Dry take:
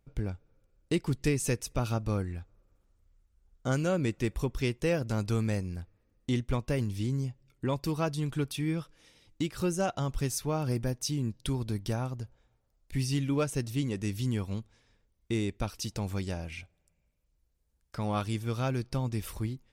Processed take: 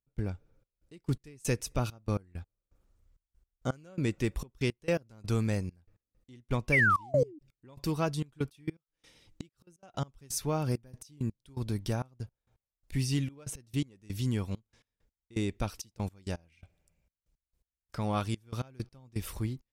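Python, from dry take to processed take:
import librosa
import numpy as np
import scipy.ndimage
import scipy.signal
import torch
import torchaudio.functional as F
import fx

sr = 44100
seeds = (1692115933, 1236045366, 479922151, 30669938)

y = fx.spec_paint(x, sr, seeds[0], shape='fall', start_s=6.72, length_s=0.67, low_hz=280.0, high_hz=2400.0, level_db=-24.0)
y = fx.gate_flip(y, sr, shuts_db=-26.0, range_db=-27, at=(8.69, 9.83))
y = fx.step_gate(y, sr, bpm=166, pattern='..xxxxx..x..x.', floor_db=-24.0, edge_ms=4.5)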